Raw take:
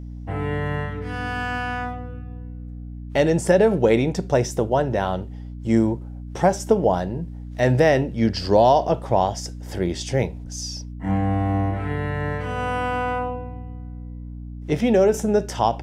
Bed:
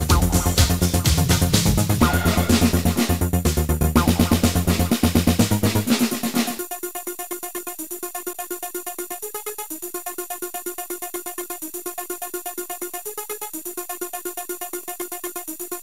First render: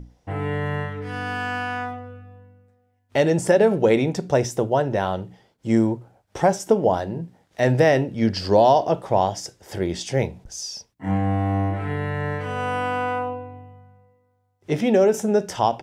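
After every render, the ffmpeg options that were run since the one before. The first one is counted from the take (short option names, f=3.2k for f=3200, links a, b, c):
-af "bandreject=f=60:t=h:w=6,bandreject=f=120:t=h:w=6,bandreject=f=180:t=h:w=6,bandreject=f=240:t=h:w=6,bandreject=f=300:t=h:w=6"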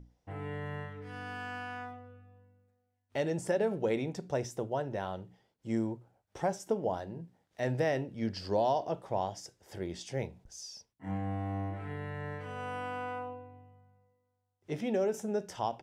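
-af "volume=-13.5dB"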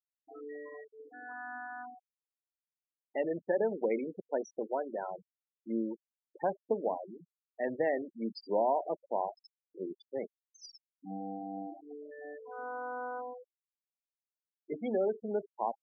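-af "highpass=f=220:w=0.5412,highpass=f=220:w=1.3066,afftfilt=real='re*gte(hypot(re,im),0.0282)':imag='im*gte(hypot(re,im),0.0282)':win_size=1024:overlap=0.75"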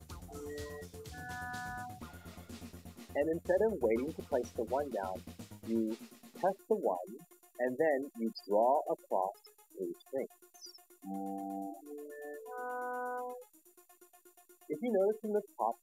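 -filter_complex "[1:a]volume=-32dB[a];[0:a][a]amix=inputs=2:normalize=0"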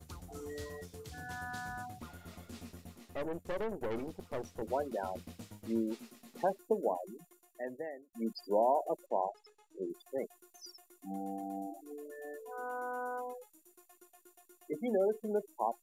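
-filter_complex "[0:a]asettb=1/sr,asplit=3[a][b][c];[a]atrim=end=2.984[d];[b]atrim=start=2.98:end=4.62,asetpts=PTS-STARTPTS,afade=t=in:d=0.004:c=qsin,afade=t=out:st=1.636:d=0.004:c=qsin,aeval=exprs='(tanh(44.7*val(0)+0.75)-tanh(0.75))/44.7':c=same[e];[c]atrim=start=4.616[f];[d][e]acrossfade=d=0.004:c1=hsin:c2=qsin[g];[g][f]acrossfade=d=0.004:c1=qsin:c2=hsin,asettb=1/sr,asplit=3[h][i][j];[h]atrim=end=9.064[k];[i]atrim=start=9.06:end=9.9,asetpts=PTS-STARTPTS,afade=t=in:d=0.004:c=qsin,afade=t=out:st=0.836:d=0.004:c=qsin,lowpass=5.1k[l];[j]atrim=start=9.896[m];[k][l]acrossfade=d=0.004:c1=hsin:c2=qsin[n];[n][m]acrossfade=d=0.004:c1=qsin:c2=hsin,asplit=2[o][p];[o]atrim=end=8.13,asetpts=PTS-STARTPTS,afade=t=out:st=7.09:d=1.04[q];[p]atrim=start=8.13,asetpts=PTS-STARTPTS,afade=t=in:d=0.004:c=hsin[r];[q][r]concat=n=2:v=0:a=1"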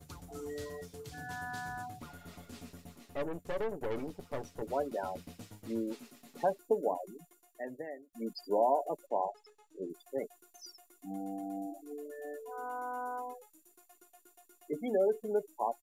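-af "aecho=1:1:7:0.4"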